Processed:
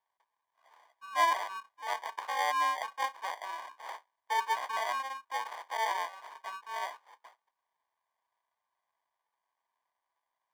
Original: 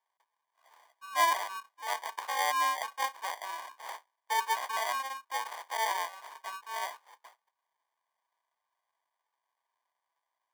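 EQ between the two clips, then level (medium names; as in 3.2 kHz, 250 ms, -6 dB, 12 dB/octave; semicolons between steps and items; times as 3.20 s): low-pass 3.5 kHz 6 dB/octave; 0.0 dB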